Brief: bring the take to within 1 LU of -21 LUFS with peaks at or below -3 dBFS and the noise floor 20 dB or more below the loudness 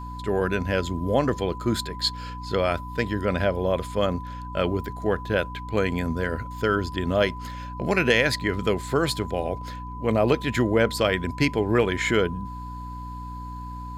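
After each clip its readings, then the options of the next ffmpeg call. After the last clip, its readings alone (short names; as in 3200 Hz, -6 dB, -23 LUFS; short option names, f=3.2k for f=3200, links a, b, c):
hum 60 Hz; harmonics up to 300 Hz; hum level -34 dBFS; steady tone 1000 Hz; tone level -37 dBFS; loudness -25.0 LUFS; peak -6.0 dBFS; loudness target -21.0 LUFS
-> -af "bandreject=f=60:t=h:w=4,bandreject=f=120:t=h:w=4,bandreject=f=180:t=h:w=4,bandreject=f=240:t=h:w=4,bandreject=f=300:t=h:w=4"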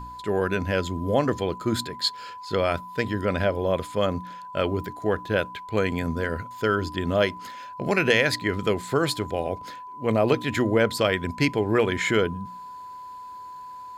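hum none; steady tone 1000 Hz; tone level -37 dBFS
-> -af "bandreject=f=1k:w=30"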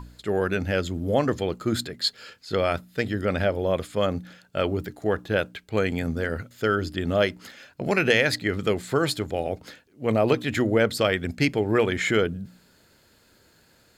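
steady tone none; loudness -25.5 LUFS; peak -6.0 dBFS; loudness target -21.0 LUFS
-> -af "volume=4.5dB,alimiter=limit=-3dB:level=0:latency=1"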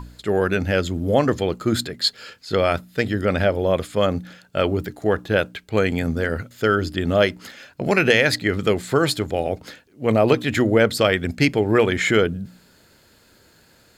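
loudness -21.0 LUFS; peak -3.0 dBFS; noise floor -55 dBFS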